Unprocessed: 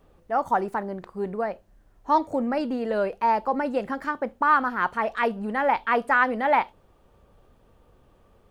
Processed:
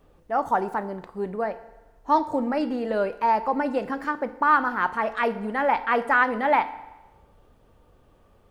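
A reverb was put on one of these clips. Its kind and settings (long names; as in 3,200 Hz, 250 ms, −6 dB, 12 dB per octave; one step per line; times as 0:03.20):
feedback delay network reverb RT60 1.1 s, low-frequency decay 0.8×, high-frequency decay 0.9×, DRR 11.5 dB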